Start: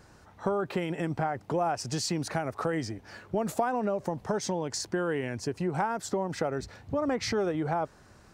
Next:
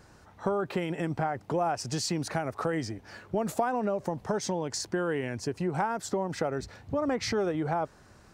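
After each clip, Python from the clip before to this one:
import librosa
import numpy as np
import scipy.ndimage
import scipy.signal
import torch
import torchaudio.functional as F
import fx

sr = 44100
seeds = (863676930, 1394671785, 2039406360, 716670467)

y = x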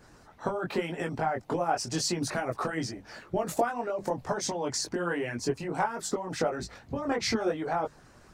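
y = fx.hum_notches(x, sr, base_hz=50, count=4)
y = fx.chorus_voices(y, sr, voices=6, hz=0.82, base_ms=21, depth_ms=4.4, mix_pct=45)
y = fx.hpss(y, sr, part='harmonic', gain_db=-9)
y = y * librosa.db_to_amplitude(7.0)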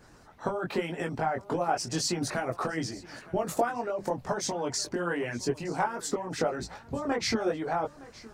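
y = x + 10.0 ** (-20.0 / 20.0) * np.pad(x, (int(915 * sr / 1000.0), 0))[:len(x)]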